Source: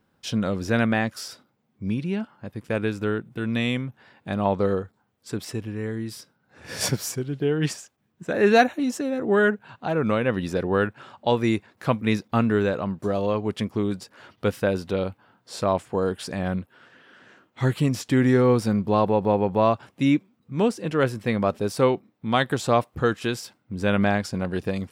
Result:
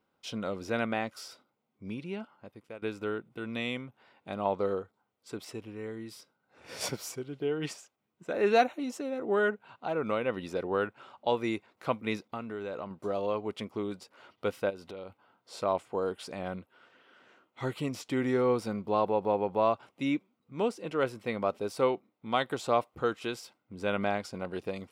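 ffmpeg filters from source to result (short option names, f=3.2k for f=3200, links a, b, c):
-filter_complex "[0:a]asettb=1/sr,asplit=3[a][b][c];[a]atrim=end=12.274[d];[b]atrim=start=12.27:end=12.91,asetpts=PTS-STARTPTS,afade=t=in:d=0.004:c=qsin,afade=t=out:st=0.636:d=0.004:c=qsin,acompressor=threshold=-26dB:ratio=4:attack=3.2:release=140:knee=1:detection=peak[e];[c]atrim=start=12.906[f];[d][e]acrossfade=d=0.004:c1=hsin:c2=qsin[g];[g][f]acrossfade=d=0.004:c1=qsin:c2=hsin,asplit=3[h][i][j];[h]afade=t=out:st=14.69:d=0.02[k];[i]acompressor=threshold=-31dB:ratio=6:attack=3.2:release=140:knee=1:detection=peak,afade=t=in:st=14.69:d=0.02,afade=t=out:st=15.09:d=0.02[l];[j]afade=t=in:st=15.09:d=0.02[m];[k][l][m]amix=inputs=3:normalize=0,asplit=2[n][o];[n]atrim=end=2.82,asetpts=PTS-STARTPTS,afade=t=out:st=2.34:d=0.48:silence=0.133352[p];[o]atrim=start=2.82,asetpts=PTS-STARTPTS,afade=t=in:d=0.004:c=hsin:silence=0.133352[q];[p][q]concat=n=2:v=0:a=1,bass=f=250:g=-11,treble=f=4k:g=-5,bandreject=f=1.7k:w=5.9,volume=-5.5dB"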